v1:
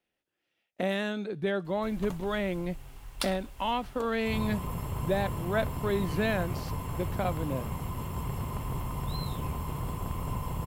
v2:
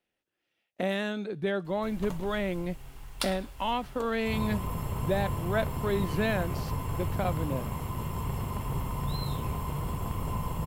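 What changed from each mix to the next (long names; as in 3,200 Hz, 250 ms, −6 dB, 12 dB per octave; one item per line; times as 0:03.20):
reverb: on, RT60 0.75 s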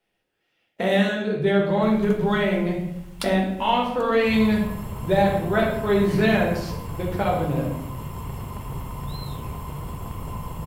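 speech: send on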